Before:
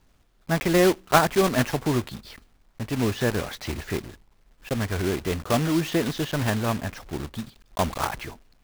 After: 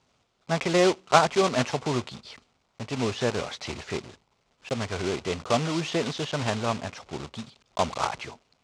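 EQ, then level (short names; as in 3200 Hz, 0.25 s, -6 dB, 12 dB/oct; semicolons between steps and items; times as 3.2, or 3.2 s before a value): speaker cabinet 100–7400 Hz, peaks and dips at 200 Hz -4 dB, 310 Hz -7 dB, 1700 Hz -7 dB; low shelf 170 Hz -6 dB; +1.0 dB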